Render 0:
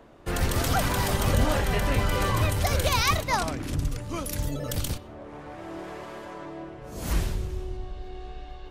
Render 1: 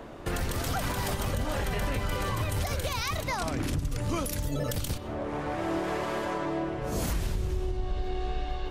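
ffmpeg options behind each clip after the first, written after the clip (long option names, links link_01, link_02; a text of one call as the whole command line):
ffmpeg -i in.wav -af "acompressor=threshold=-32dB:ratio=4,alimiter=level_in=5dB:limit=-24dB:level=0:latency=1:release=171,volume=-5dB,volume=8.5dB" out.wav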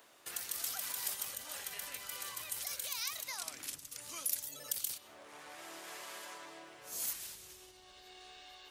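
ffmpeg -i in.wav -af "aderivative" out.wav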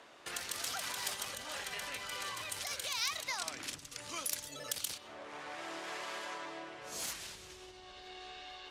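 ffmpeg -i in.wav -af "adynamicsmooth=sensitivity=4.5:basefreq=5400,volume=7dB" out.wav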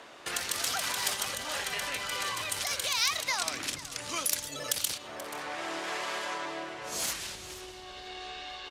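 ffmpeg -i in.wav -af "aecho=1:1:482:0.15,volume=7.5dB" out.wav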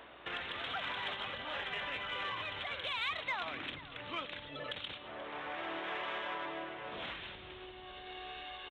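ffmpeg -i in.wav -filter_complex "[0:a]aeval=exprs='val(0)+0.000398*(sin(2*PI*60*n/s)+sin(2*PI*2*60*n/s)/2+sin(2*PI*3*60*n/s)/3+sin(2*PI*4*60*n/s)/4+sin(2*PI*5*60*n/s)/5)':channel_layout=same,aresample=8000,aresample=44100,asplit=2[link_01][link_02];[link_02]asoftclip=type=tanh:threshold=-30.5dB,volume=-10dB[link_03];[link_01][link_03]amix=inputs=2:normalize=0,volume=-6dB" out.wav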